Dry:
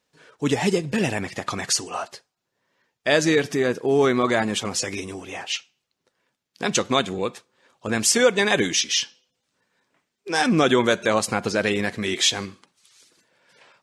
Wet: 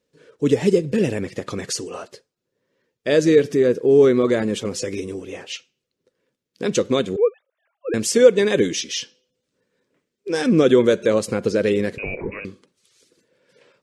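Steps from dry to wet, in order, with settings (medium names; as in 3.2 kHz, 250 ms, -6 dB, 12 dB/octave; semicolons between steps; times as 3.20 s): 7.16–7.94 s: formants replaced by sine waves; 11.98–12.45 s: frequency inversion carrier 2.7 kHz; resonant low shelf 610 Hz +6.5 dB, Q 3; trim -4.5 dB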